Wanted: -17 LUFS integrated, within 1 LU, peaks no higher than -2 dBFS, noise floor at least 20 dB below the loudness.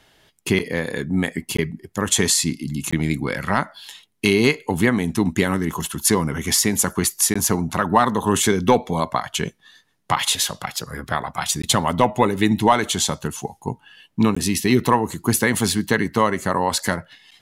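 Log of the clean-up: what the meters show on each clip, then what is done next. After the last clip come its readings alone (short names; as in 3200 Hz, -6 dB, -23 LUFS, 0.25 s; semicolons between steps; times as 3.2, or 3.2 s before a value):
dropouts 5; longest dropout 15 ms; loudness -20.5 LUFS; peak -4.5 dBFS; loudness target -17.0 LUFS
-> interpolate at 1.57/2.91/7.34/11.62/14.35, 15 ms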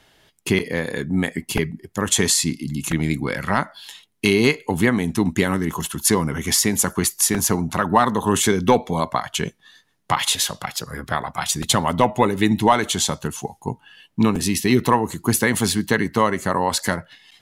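dropouts 0; loudness -20.5 LUFS; peak -4.5 dBFS; loudness target -17.0 LUFS
-> gain +3.5 dB; limiter -2 dBFS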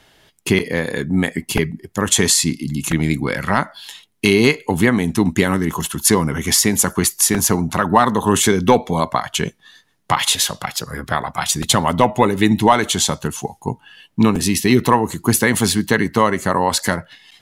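loudness -17.0 LUFS; peak -2.0 dBFS; noise floor -57 dBFS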